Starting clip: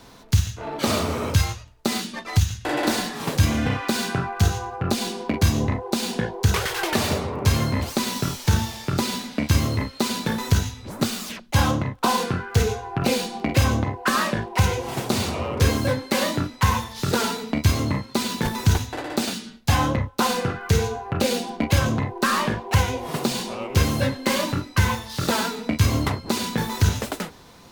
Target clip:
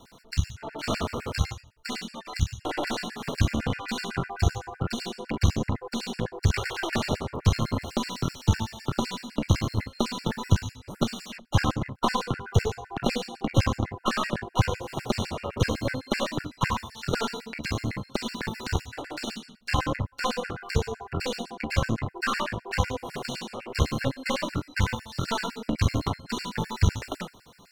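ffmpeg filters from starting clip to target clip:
-filter_complex "[0:a]acrossover=split=6700[s0][s1];[s1]acompressor=threshold=0.00355:ratio=4:attack=1:release=60[s2];[s0][s2]amix=inputs=2:normalize=0,aeval=exprs='0.531*(cos(1*acos(clip(val(0)/0.531,-1,1)))-cos(1*PI/2))+0.0376*(cos(2*acos(clip(val(0)/0.531,-1,1)))-cos(2*PI/2))+0.0531*(cos(3*acos(clip(val(0)/0.531,-1,1)))-cos(3*PI/2))+0.0335*(cos(6*acos(clip(val(0)/0.531,-1,1)))-cos(6*PI/2))':c=same,afftfilt=real='re*gt(sin(2*PI*7.9*pts/sr)*(1-2*mod(floor(b*sr/1024/1400),2)),0)':imag='im*gt(sin(2*PI*7.9*pts/sr)*(1-2*mod(floor(b*sr/1024/1400),2)),0)':win_size=1024:overlap=0.75"

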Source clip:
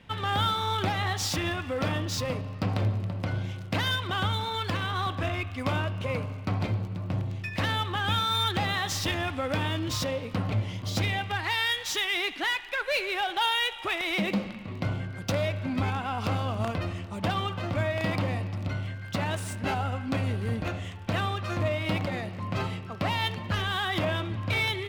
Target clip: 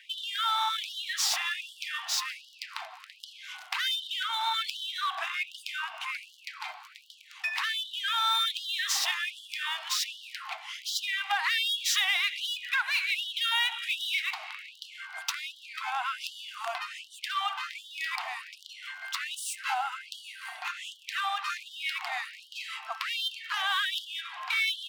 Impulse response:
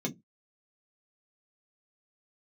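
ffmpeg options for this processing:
-af "acompressor=threshold=0.0355:ratio=6,afftfilt=real='re*gte(b*sr/1024,640*pow(2900/640,0.5+0.5*sin(2*PI*1.3*pts/sr)))':imag='im*gte(b*sr/1024,640*pow(2900/640,0.5+0.5*sin(2*PI*1.3*pts/sr)))':win_size=1024:overlap=0.75,volume=2.11"

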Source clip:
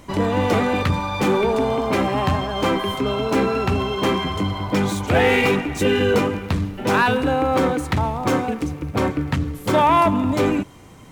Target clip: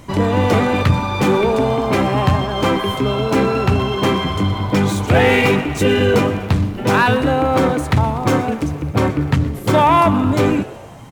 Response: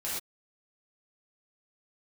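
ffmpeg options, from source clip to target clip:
-filter_complex "[0:a]equalizer=f=120:t=o:w=0.68:g=7,asplit=6[s0][s1][s2][s3][s4][s5];[s1]adelay=123,afreqshift=130,volume=0.119[s6];[s2]adelay=246,afreqshift=260,volume=0.0676[s7];[s3]adelay=369,afreqshift=390,volume=0.0385[s8];[s4]adelay=492,afreqshift=520,volume=0.0221[s9];[s5]adelay=615,afreqshift=650,volume=0.0126[s10];[s0][s6][s7][s8][s9][s10]amix=inputs=6:normalize=0,volume=1.41"

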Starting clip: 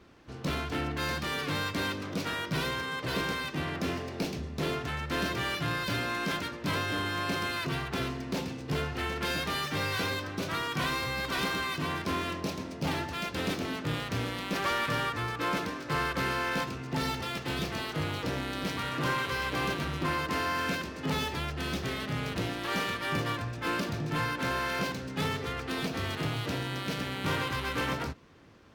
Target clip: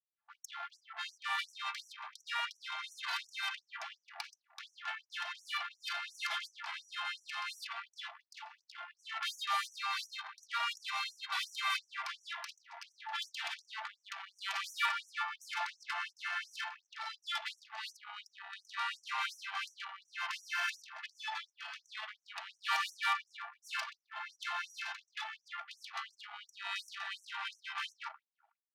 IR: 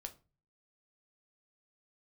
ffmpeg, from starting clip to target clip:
-filter_complex "[0:a]acrossover=split=210|4300[s0][s1][s2];[s0]dynaudnorm=f=160:g=3:m=4.47[s3];[s3][s1][s2]amix=inputs=3:normalize=0,aecho=1:1:123|246|369|492|615:0.168|0.0923|0.0508|0.0279|0.0154[s4];[1:a]atrim=start_sample=2205,afade=t=out:st=0.18:d=0.01,atrim=end_sample=8379,asetrate=29988,aresample=44100[s5];[s4][s5]afir=irnorm=-1:irlink=0,acompressor=threshold=0.0224:ratio=8,anlmdn=0.1,aecho=1:1:3.5:0.5,afftfilt=real='re*gte(b*sr/1024,640*pow(5700/640,0.5+0.5*sin(2*PI*2.8*pts/sr)))':imag='im*gte(b*sr/1024,640*pow(5700/640,0.5+0.5*sin(2*PI*2.8*pts/sr)))':win_size=1024:overlap=0.75,volume=2.66"

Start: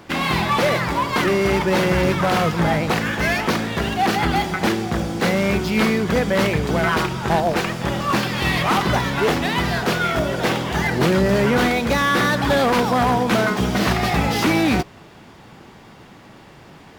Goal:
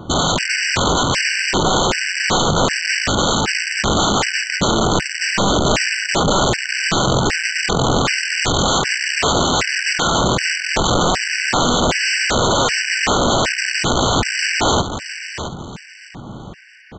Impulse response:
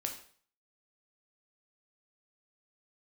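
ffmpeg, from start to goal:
-af "bass=f=250:g=8,treble=f=4000:g=-7,acompressor=threshold=0.158:ratio=20,aresample=16000,aeval=exprs='(mod(7.08*val(0)+1,2)-1)/7.08':c=same,aresample=44100,aecho=1:1:669|1338|2007:0.316|0.0854|0.0231,afftfilt=real='re*gt(sin(2*PI*1.3*pts/sr)*(1-2*mod(floor(b*sr/1024/1500),2)),0)':imag='im*gt(sin(2*PI*1.3*pts/sr)*(1-2*mod(floor(b*sr/1024/1500),2)),0)':win_size=1024:overlap=0.75,volume=2.37"

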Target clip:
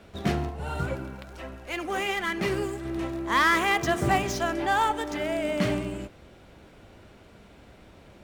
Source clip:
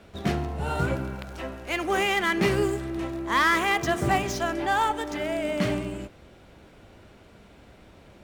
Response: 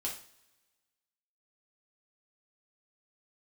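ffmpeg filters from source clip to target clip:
-filter_complex "[0:a]asplit=3[s0][s1][s2];[s0]afade=t=out:st=0.49:d=0.02[s3];[s1]flanger=delay=0.3:depth=4.1:regen=62:speed=1.3:shape=triangular,afade=t=in:st=0.49:d=0.02,afade=t=out:st=2.84:d=0.02[s4];[s2]afade=t=in:st=2.84:d=0.02[s5];[s3][s4][s5]amix=inputs=3:normalize=0"

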